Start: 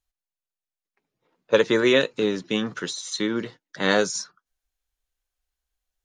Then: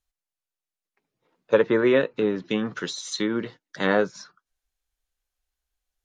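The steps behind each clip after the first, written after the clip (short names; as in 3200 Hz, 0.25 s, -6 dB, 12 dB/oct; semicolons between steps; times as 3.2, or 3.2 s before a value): treble ducked by the level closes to 1800 Hz, closed at -19.5 dBFS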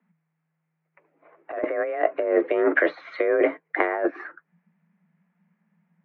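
frequency shift +160 Hz; elliptic low-pass 2200 Hz, stop band 80 dB; negative-ratio compressor -31 dBFS, ratio -1; gain +8 dB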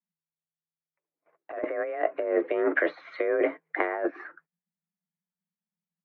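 gate -52 dBFS, range -24 dB; gain -4.5 dB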